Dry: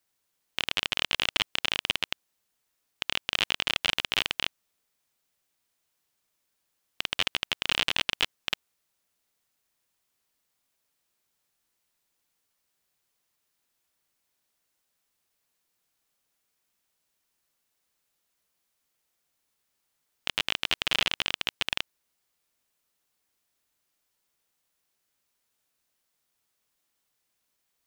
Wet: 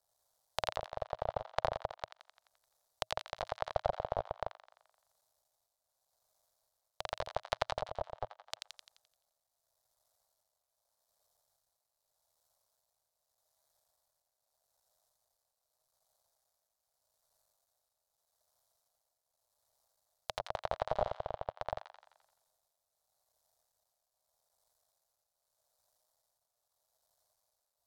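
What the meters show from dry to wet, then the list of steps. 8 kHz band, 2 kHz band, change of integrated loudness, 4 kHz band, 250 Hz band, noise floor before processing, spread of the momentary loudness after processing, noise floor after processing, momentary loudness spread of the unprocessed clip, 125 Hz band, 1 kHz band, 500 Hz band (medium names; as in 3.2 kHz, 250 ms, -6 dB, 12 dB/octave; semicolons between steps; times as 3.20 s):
-15.5 dB, -18.0 dB, -11.5 dB, -21.5 dB, -11.0 dB, -78 dBFS, 10 LU, under -85 dBFS, 8 LU, -1.0 dB, +1.0 dB, +6.0 dB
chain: cycle switcher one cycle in 2, muted; low-pass that closes with the level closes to 760 Hz, closed at -31 dBFS; FFT filter 110 Hz 0 dB, 300 Hz -18 dB, 630 Hz +10 dB, 2.7 kHz -19 dB, 3.9 kHz -3 dB; feedback echo behind a high-pass 86 ms, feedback 51%, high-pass 1.5 kHz, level -4.5 dB; tremolo triangle 0.82 Hz, depth 65%; trim +5.5 dB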